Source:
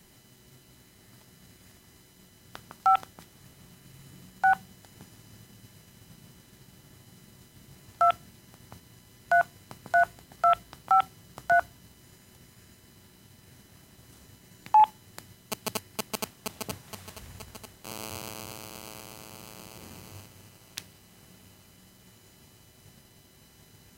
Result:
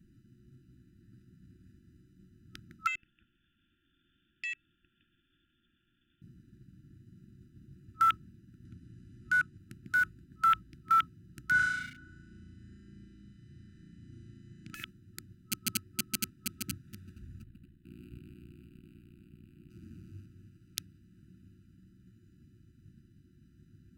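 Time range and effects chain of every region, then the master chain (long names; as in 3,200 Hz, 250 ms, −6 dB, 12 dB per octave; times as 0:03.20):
0:02.87–0:06.22: downward compressor 2 to 1, threshold −38 dBFS + voice inversion scrambler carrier 3,400 Hz + saturating transformer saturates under 1,500 Hz
0:08.65–0:09.58: low-pass filter 11,000 Hz 24 dB per octave + upward compression, threshold −42 dBFS
0:11.51–0:14.74: Butterworth low-pass 9,600 Hz + flutter between parallel walls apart 6 metres, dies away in 1.4 s
0:17.43–0:19.70: ring modulation 30 Hz + phaser with its sweep stopped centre 2,500 Hz, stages 4
whole clip: adaptive Wiener filter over 41 samples; brick-wall band-stop 370–1,300 Hz; high-shelf EQ 7,200 Hz +5.5 dB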